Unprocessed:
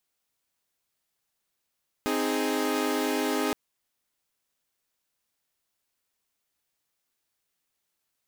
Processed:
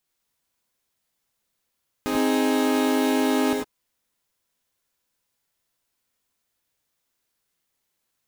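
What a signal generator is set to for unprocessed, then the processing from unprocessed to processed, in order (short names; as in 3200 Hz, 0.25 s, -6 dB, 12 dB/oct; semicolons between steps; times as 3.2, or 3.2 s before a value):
chord C4/D#4/G#4 saw, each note -27 dBFS 1.47 s
low shelf 250 Hz +4 dB; non-linear reverb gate 0.12 s rising, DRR 0.5 dB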